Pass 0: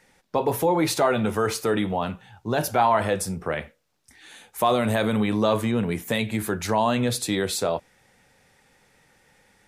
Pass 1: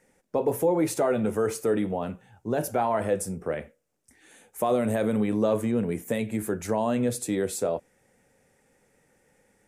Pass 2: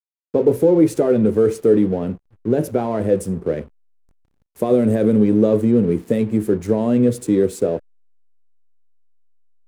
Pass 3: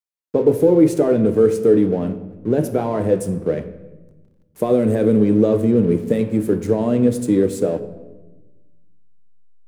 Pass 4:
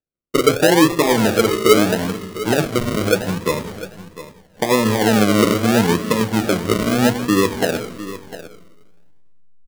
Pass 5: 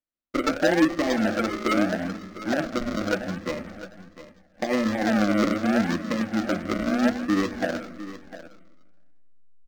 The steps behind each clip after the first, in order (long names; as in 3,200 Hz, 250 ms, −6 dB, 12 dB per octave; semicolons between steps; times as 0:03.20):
octave-band graphic EQ 250/500/1,000/4,000/8,000 Hz +4/+6/−4/−10/+5 dB; level −6 dB
low shelf with overshoot 580 Hz +9.5 dB, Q 1.5; slack as between gear wheels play −35.5 dBFS
rectangular room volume 650 cubic metres, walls mixed, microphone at 0.48 metres
sample-and-hold swept by an LFO 41×, swing 60% 0.78 Hz; single-tap delay 702 ms −14.5 dB
phaser with its sweep stopped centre 640 Hz, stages 8; linearly interpolated sample-rate reduction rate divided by 4×; level −4.5 dB